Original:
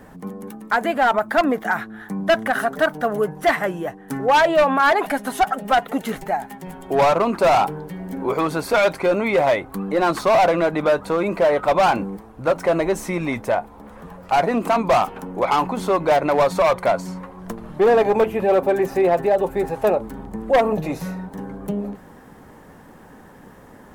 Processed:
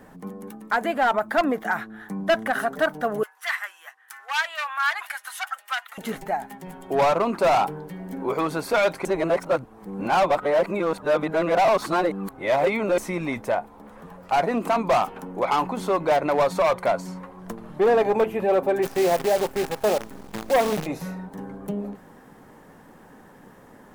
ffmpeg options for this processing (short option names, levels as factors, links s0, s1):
-filter_complex "[0:a]asettb=1/sr,asplit=3[s0][s1][s2];[s0]atrim=end=3.234[s3];[s1]atrim=start=3.23:end=5.98,asetpts=PTS-STARTPTS,afade=t=in:d=0.004:c=qsin,afade=t=out:st=2.746:d=0.004:c=qsin,highpass=f=1200:w=0.5412,highpass=f=1200:w=1.3066[s4];[s2]atrim=start=5.976[s5];[s3][s4]acrossfade=d=0.004:c1=hsin:c2=qsin[s6];[s6][s5]acrossfade=d=0.004:c1=qsin:c2=hsin,asplit=3[s7][s8][s9];[s7]afade=t=out:st=18.82:d=0.02[s10];[s8]acrusher=bits=5:dc=4:mix=0:aa=0.000001,afade=t=in:st=18.82:d=0.02,afade=t=out:st=20.85:d=0.02[s11];[s9]afade=t=in:st=20.85:d=0.02[s12];[s10][s11][s12]amix=inputs=3:normalize=0,asplit=3[s13][s14][s15];[s13]atrim=end=9.052[s16];[s14]atrim=start=9.048:end=12.982,asetpts=PTS-STARTPTS,areverse[s17];[s15]atrim=start=12.978[s18];[s16][s17]acrossfade=d=0.004:c1=hsin:c2=hsin[s19];[s19][s18]acrossfade=d=0.004:c1=hsin:c2=hsin,equalizer=f=61:t=o:w=1.1:g=-9,volume=0.668"